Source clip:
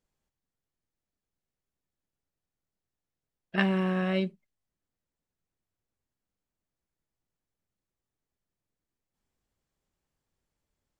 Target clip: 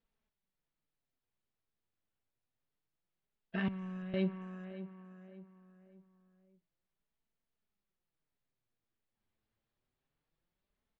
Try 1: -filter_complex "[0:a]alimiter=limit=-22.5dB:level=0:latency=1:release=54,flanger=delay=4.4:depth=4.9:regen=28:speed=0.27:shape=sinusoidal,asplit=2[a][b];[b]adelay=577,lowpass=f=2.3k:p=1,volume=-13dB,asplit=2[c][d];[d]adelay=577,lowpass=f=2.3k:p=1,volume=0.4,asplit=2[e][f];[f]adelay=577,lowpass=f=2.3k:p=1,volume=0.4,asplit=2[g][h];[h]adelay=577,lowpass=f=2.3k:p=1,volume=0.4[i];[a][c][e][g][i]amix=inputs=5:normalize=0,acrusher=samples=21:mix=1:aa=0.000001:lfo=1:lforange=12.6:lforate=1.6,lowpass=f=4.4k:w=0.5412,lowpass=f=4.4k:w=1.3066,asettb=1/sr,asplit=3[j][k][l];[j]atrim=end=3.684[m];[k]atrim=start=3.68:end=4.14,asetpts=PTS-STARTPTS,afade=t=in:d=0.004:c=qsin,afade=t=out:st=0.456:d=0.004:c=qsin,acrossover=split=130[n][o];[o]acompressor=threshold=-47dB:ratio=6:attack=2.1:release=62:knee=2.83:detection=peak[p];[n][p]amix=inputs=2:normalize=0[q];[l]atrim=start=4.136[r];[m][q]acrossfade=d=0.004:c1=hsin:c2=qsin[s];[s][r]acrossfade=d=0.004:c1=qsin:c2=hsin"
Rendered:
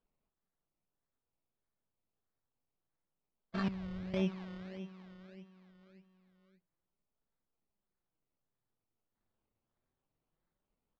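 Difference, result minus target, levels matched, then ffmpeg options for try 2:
decimation with a swept rate: distortion +13 dB
-filter_complex "[0:a]alimiter=limit=-22.5dB:level=0:latency=1:release=54,flanger=delay=4.4:depth=4.9:regen=28:speed=0.27:shape=sinusoidal,asplit=2[a][b];[b]adelay=577,lowpass=f=2.3k:p=1,volume=-13dB,asplit=2[c][d];[d]adelay=577,lowpass=f=2.3k:p=1,volume=0.4,asplit=2[e][f];[f]adelay=577,lowpass=f=2.3k:p=1,volume=0.4,asplit=2[g][h];[h]adelay=577,lowpass=f=2.3k:p=1,volume=0.4[i];[a][c][e][g][i]amix=inputs=5:normalize=0,acrusher=samples=4:mix=1:aa=0.000001:lfo=1:lforange=2.4:lforate=1.6,lowpass=f=4.4k:w=0.5412,lowpass=f=4.4k:w=1.3066,asettb=1/sr,asplit=3[j][k][l];[j]atrim=end=3.684[m];[k]atrim=start=3.68:end=4.14,asetpts=PTS-STARTPTS,afade=t=in:d=0.004:c=qsin,afade=t=out:st=0.456:d=0.004:c=qsin,acrossover=split=130[n][o];[o]acompressor=threshold=-47dB:ratio=6:attack=2.1:release=62:knee=2.83:detection=peak[p];[n][p]amix=inputs=2:normalize=0[q];[l]atrim=start=4.136[r];[m][q]acrossfade=d=0.004:c1=hsin:c2=qsin[s];[s][r]acrossfade=d=0.004:c1=qsin:c2=hsin"

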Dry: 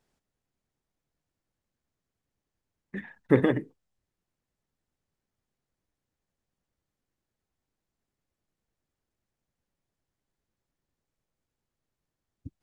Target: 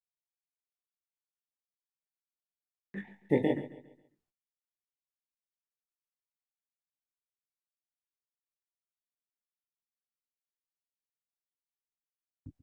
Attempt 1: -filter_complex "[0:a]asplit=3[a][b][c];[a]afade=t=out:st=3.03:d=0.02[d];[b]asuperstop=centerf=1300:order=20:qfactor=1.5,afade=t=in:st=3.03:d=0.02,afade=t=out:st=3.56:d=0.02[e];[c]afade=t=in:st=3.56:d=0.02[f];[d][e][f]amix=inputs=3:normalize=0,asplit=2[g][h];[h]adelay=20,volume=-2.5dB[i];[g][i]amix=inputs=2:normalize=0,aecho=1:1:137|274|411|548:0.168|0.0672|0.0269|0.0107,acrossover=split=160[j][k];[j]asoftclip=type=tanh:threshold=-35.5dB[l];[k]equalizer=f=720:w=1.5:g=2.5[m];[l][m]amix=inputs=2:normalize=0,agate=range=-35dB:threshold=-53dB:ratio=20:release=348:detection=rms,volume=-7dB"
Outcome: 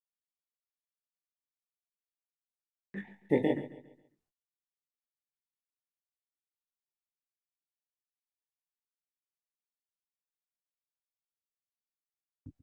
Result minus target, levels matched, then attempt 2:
soft clip: distortion +13 dB
-filter_complex "[0:a]asplit=3[a][b][c];[a]afade=t=out:st=3.03:d=0.02[d];[b]asuperstop=centerf=1300:order=20:qfactor=1.5,afade=t=in:st=3.03:d=0.02,afade=t=out:st=3.56:d=0.02[e];[c]afade=t=in:st=3.56:d=0.02[f];[d][e][f]amix=inputs=3:normalize=0,asplit=2[g][h];[h]adelay=20,volume=-2.5dB[i];[g][i]amix=inputs=2:normalize=0,aecho=1:1:137|274|411|548:0.168|0.0672|0.0269|0.0107,acrossover=split=160[j][k];[j]asoftclip=type=tanh:threshold=-24.5dB[l];[k]equalizer=f=720:w=1.5:g=2.5[m];[l][m]amix=inputs=2:normalize=0,agate=range=-35dB:threshold=-53dB:ratio=20:release=348:detection=rms,volume=-7dB"

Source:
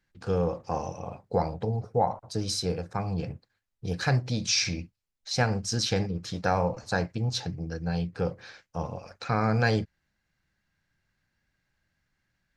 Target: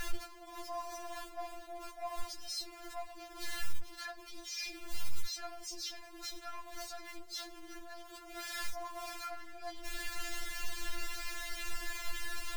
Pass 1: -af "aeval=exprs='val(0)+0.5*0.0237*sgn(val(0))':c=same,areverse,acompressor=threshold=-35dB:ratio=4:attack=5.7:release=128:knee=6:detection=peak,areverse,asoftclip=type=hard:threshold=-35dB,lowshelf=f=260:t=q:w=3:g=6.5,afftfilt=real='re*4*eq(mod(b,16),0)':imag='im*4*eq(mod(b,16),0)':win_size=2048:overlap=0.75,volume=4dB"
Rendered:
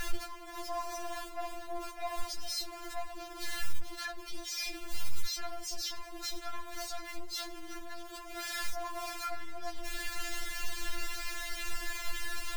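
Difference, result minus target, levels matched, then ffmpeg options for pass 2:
compressor: peak gain reduction -5 dB
-af "aeval=exprs='val(0)+0.5*0.0237*sgn(val(0))':c=same,areverse,acompressor=threshold=-42dB:ratio=4:attack=5.7:release=128:knee=6:detection=peak,areverse,asoftclip=type=hard:threshold=-35dB,lowshelf=f=260:t=q:w=3:g=6.5,afftfilt=real='re*4*eq(mod(b,16),0)':imag='im*4*eq(mod(b,16),0)':win_size=2048:overlap=0.75,volume=4dB"

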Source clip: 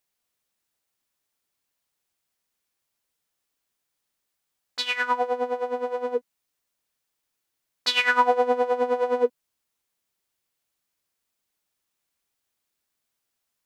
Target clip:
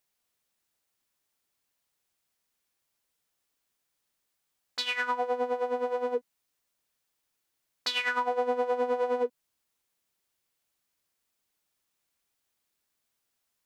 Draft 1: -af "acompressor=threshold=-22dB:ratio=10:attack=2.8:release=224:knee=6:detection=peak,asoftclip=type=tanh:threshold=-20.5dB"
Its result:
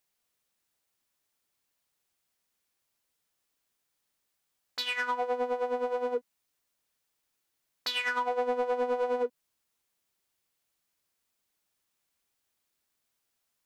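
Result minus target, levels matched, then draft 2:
soft clip: distortion +18 dB
-af "acompressor=threshold=-22dB:ratio=10:attack=2.8:release=224:knee=6:detection=peak,asoftclip=type=tanh:threshold=-9.5dB"

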